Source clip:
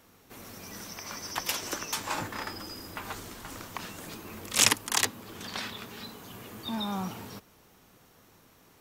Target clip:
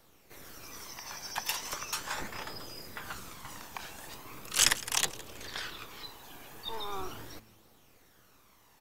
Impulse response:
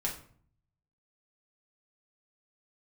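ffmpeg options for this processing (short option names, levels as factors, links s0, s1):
-filter_complex "[0:a]flanger=delay=0.2:depth=1.1:regen=44:speed=0.39:shape=triangular,acrossover=split=420|3600[s0][s1][s2];[s0]aeval=exprs='abs(val(0))':c=same[s3];[s3][s1][s2]amix=inputs=3:normalize=0,asplit=4[s4][s5][s6][s7];[s5]adelay=162,afreqshift=-110,volume=0.119[s8];[s6]adelay=324,afreqshift=-220,volume=0.0442[s9];[s7]adelay=486,afreqshift=-330,volume=0.0162[s10];[s4][s8][s9][s10]amix=inputs=4:normalize=0,volume=1.19"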